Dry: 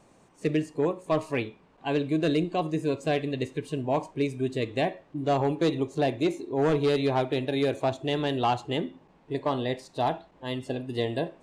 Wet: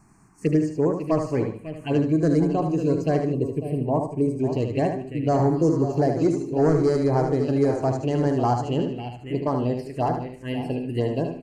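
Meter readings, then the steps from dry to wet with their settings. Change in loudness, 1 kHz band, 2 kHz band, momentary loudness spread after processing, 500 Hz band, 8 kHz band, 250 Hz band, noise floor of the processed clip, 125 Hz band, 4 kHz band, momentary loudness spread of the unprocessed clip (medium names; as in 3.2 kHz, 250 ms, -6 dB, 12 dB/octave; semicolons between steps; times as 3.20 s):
+5.0 dB, +2.5 dB, -3.5 dB, 8 LU, +4.0 dB, no reading, +6.5 dB, -45 dBFS, +8.0 dB, -7.0 dB, 7 LU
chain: delay 549 ms -10 dB; spectral replace 5.57–5.87 s, 940–5100 Hz after; Butterworth band-stop 3.6 kHz, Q 2.6; tilt shelf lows -3.5 dB, about 1.3 kHz; touch-sensitive phaser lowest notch 520 Hz, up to 2.7 kHz, full sweep at -25.5 dBFS; bass shelf 420 Hz +10 dB; on a send: feedback delay 75 ms, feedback 30%, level -6 dB; on the sum: time-frequency box 3.33–4.39 s, 1.2–7.7 kHz -12 dB; trim +1.5 dB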